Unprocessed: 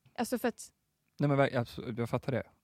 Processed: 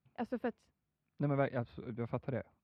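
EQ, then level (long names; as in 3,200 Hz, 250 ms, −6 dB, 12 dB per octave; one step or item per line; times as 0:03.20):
high-frequency loss of the air 390 metres
−4.5 dB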